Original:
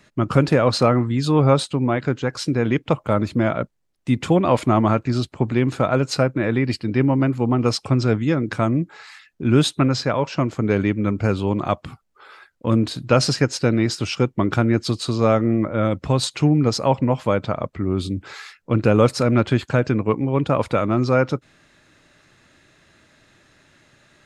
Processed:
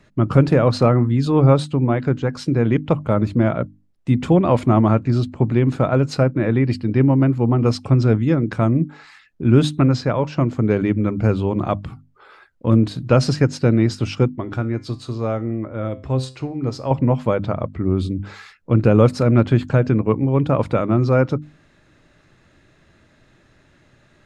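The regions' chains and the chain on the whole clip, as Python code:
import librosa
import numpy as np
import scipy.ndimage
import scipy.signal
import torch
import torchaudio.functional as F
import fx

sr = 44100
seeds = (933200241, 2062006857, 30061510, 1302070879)

y = fx.chain(x, sr, fx.peak_eq(hz=170.0, db=-9.0, octaves=0.5),
    fx.comb_fb(f0_hz=130.0, decay_s=0.36, harmonics='all', damping=0.0, mix_pct=60), at=(14.36, 16.91))
y = fx.tilt_eq(y, sr, slope=-2.0)
y = fx.hum_notches(y, sr, base_hz=50, count=6)
y = y * librosa.db_to_amplitude(-1.0)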